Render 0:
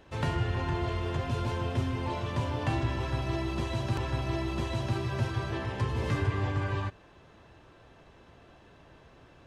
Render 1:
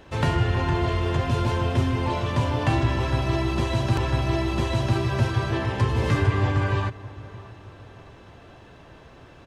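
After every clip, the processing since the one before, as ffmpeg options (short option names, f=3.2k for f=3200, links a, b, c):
-filter_complex "[0:a]asplit=2[a][b];[b]adelay=617,lowpass=f=2k:p=1,volume=-19dB,asplit=2[c][d];[d]adelay=617,lowpass=f=2k:p=1,volume=0.47,asplit=2[e][f];[f]adelay=617,lowpass=f=2k:p=1,volume=0.47,asplit=2[g][h];[h]adelay=617,lowpass=f=2k:p=1,volume=0.47[i];[a][c][e][g][i]amix=inputs=5:normalize=0,volume=7.5dB"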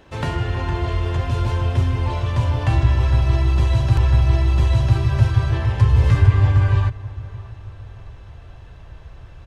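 -af "asubboost=boost=10.5:cutoff=78,volume=-1dB"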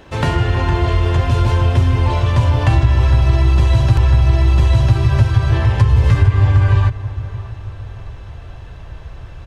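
-af "acompressor=threshold=-15dB:ratio=4,volume=7dB"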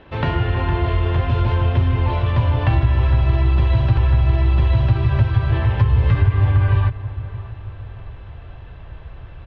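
-af "lowpass=f=3.6k:w=0.5412,lowpass=f=3.6k:w=1.3066,volume=-3.5dB"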